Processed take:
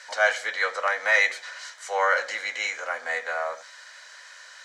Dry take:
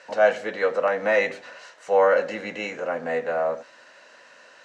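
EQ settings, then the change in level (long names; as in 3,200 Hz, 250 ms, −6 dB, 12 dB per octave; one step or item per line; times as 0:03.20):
high-pass filter 1,300 Hz 12 dB per octave
Butterworth band-reject 2,700 Hz, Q 7.4
high-shelf EQ 4,800 Hz +8 dB
+5.5 dB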